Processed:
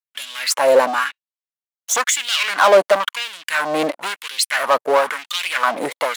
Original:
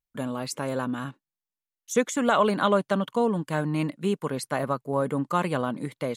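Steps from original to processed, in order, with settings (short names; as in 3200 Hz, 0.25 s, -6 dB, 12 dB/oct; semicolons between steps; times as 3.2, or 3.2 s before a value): sample leveller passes 5; LFO high-pass sine 0.98 Hz 530–3300 Hz; gain -1.5 dB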